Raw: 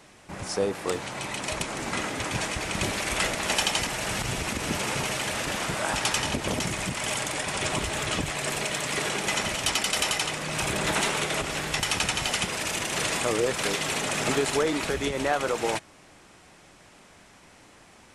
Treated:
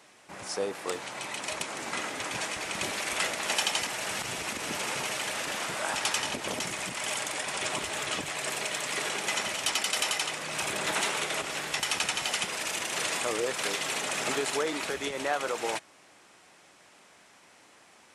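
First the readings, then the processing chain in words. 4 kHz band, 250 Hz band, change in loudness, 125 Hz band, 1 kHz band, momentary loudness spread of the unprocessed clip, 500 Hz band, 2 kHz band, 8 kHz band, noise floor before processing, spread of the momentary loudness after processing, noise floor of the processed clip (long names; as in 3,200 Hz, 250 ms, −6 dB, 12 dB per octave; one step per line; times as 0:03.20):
−2.5 dB, −8.5 dB, −3.5 dB, −13.0 dB, −3.5 dB, 5 LU, −5.0 dB, −2.5 dB, −2.5 dB, −53 dBFS, 6 LU, −58 dBFS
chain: high-pass filter 440 Hz 6 dB per octave
level −2.5 dB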